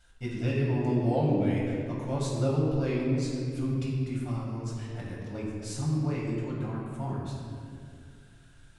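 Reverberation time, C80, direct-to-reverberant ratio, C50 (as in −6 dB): 2.3 s, 1.5 dB, −5.5 dB, 0.0 dB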